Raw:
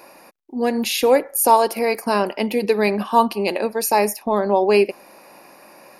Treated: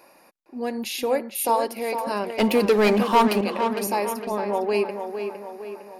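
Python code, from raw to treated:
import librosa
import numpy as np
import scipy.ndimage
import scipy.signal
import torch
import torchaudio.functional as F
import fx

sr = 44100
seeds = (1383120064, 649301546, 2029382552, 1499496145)

y = fx.leveller(x, sr, passes=3, at=(2.38, 3.41))
y = fx.echo_tape(y, sr, ms=458, feedback_pct=56, wet_db=-6.0, lp_hz=3200.0, drive_db=4.0, wow_cents=10)
y = F.gain(torch.from_numpy(y), -8.0).numpy()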